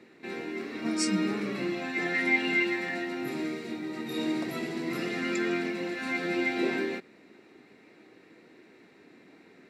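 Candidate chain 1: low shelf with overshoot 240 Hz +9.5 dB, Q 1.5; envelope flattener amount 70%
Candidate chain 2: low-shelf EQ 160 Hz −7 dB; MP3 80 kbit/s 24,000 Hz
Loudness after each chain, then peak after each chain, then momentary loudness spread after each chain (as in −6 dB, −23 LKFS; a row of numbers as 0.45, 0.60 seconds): −21.0, −31.5 LKFS; −8.0, −14.5 dBFS; 9, 11 LU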